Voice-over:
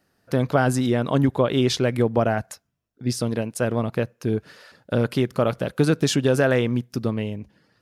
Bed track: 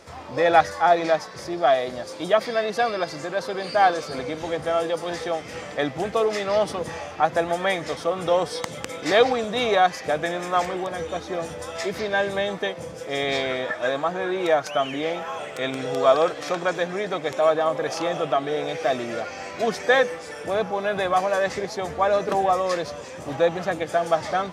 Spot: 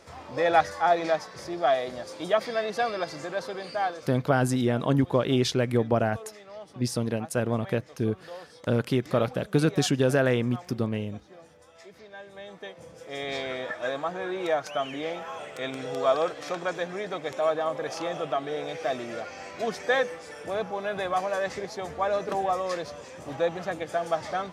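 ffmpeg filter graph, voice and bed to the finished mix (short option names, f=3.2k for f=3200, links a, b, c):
-filter_complex "[0:a]adelay=3750,volume=-3.5dB[a];[1:a]volume=11dB,afade=t=out:st=3.34:d=0.88:silence=0.141254,afade=t=in:st=12.27:d=1.39:silence=0.16788[b];[a][b]amix=inputs=2:normalize=0"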